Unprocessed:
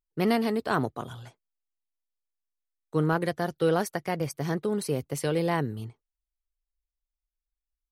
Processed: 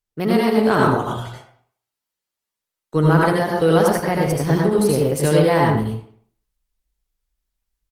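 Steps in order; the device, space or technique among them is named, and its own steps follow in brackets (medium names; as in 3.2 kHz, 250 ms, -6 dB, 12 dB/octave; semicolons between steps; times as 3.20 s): speakerphone in a meeting room (reverberation RT60 0.55 s, pre-delay 71 ms, DRR -2 dB; speakerphone echo 200 ms, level -27 dB; level rider gain up to 6.5 dB; trim +2 dB; Opus 24 kbps 48 kHz)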